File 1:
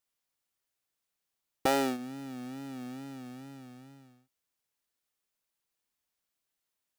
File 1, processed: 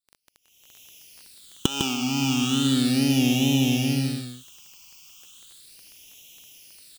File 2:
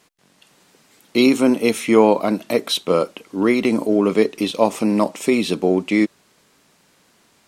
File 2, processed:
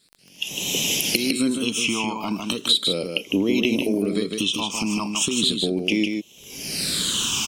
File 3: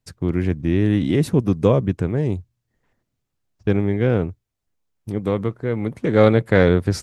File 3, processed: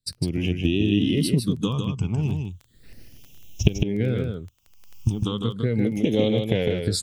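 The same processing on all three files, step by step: recorder AGC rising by 38 dB/s; spectral noise reduction 8 dB; resonant high shelf 2400 Hz +7.5 dB, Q 3; compressor 4:1, threshold -18 dBFS; wow and flutter 19 cents; phaser stages 8, 0.36 Hz, lowest notch 510–1400 Hz; on a send: echo 0.154 s -5 dB; on the sum: crackle 12/s -34 dBFS

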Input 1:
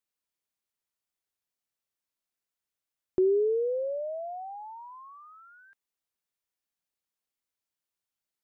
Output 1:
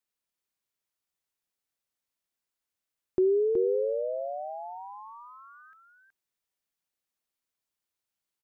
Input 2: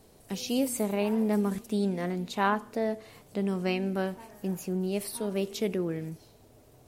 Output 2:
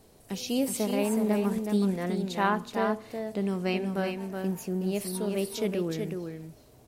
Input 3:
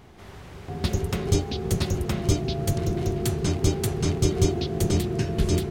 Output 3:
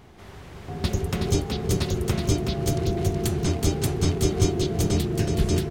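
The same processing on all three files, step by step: echo 0.372 s -5.5 dB

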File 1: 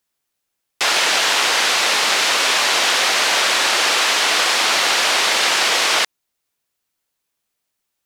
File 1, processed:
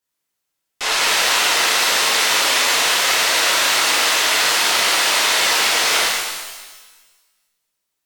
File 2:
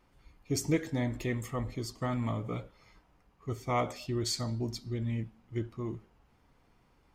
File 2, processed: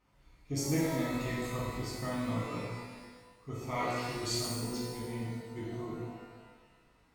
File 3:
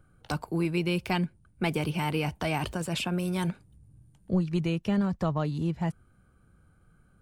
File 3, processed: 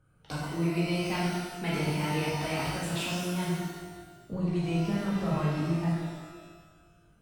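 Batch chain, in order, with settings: added harmonics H 2 -18 dB, 8 -26 dB, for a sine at -3 dBFS; shimmer reverb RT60 1.3 s, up +12 st, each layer -8 dB, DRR -6.5 dB; gain -8 dB

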